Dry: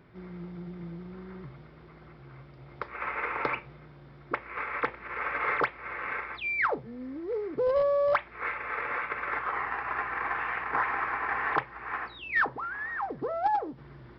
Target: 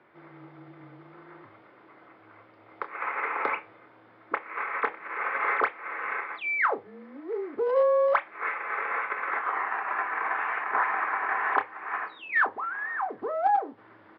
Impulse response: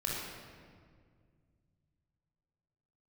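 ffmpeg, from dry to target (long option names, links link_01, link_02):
-filter_complex "[0:a]highpass=480,lowpass=2500,afreqshift=-28,asplit=2[link_01][link_02];[link_02]adelay=28,volume=-10.5dB[link_03];[link_01][link_03]amix=inputs=2:normalize=0,volume=3dB"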